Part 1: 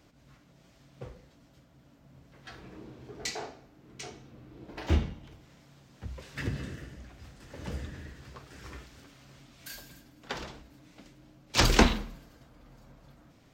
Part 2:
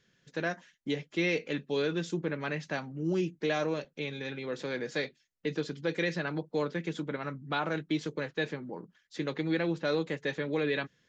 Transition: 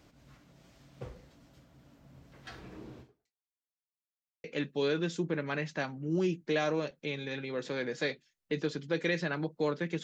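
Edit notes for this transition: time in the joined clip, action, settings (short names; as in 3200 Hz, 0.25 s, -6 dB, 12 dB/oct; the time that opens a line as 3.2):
part 1
3–3.51 fade out exponential
3.51–4.44 mute
4.44 switch to part 2 from 1.38 s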